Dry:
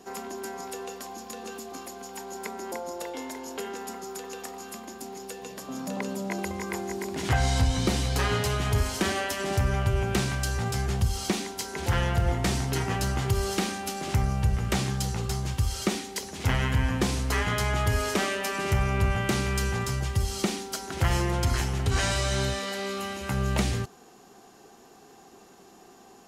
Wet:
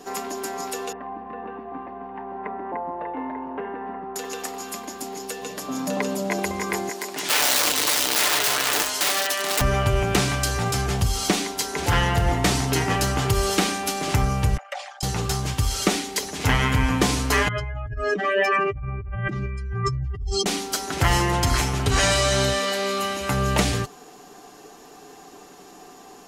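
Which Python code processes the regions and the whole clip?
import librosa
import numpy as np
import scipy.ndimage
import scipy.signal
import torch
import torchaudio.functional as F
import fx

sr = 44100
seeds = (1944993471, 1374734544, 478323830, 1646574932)

y = fx.chain(x, sr, fx.bessel_lowpass(hz=1300.0, order=6),
    fx.comb(ms=1.1, depth=0.31), at=(0.92, 4.16))
y = fx.chain(y, sr, fx.overflow_wrap(gain_db=21.5),
    fx.highpass(hz=800.0, slope=6), at=(6.89, 9.61))
y = fx.chain(y, sr, fx.envelope_sharpen(power=2.0),
    fx.cheby_ripple_highpass(hz=540.0, ripple_db=6),
    fx.env_flatten(amount_pct=50), at=(14.57, 15.03))
y = fx.chain(y, sr, fx.spec_expand(power=2.6),
    fx.peak_eq(hz=4900.0, db=9.0, octaves=2.8),
    fx.over_compress(threshold_db=-31.0, ratio=-1.0), at=(17.48, 20.46))
y = fx.peak_eq(y, sr, hz=130.0, db=-6.0, octaves=0.92)
y = y + 0.46 * np.pad(y, (int(6.8 * sr / 1000.0), 0))[:len(y)]
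y = y * librosa.db_to_amplitude(7.0)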